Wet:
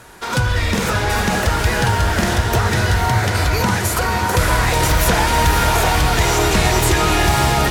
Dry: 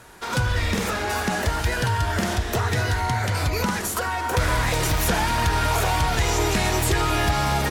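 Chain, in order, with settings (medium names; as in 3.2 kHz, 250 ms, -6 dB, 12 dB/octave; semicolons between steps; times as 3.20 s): echo that smears into a reverb 542 ms, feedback 51%, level -4.5 dB; trim +5 dB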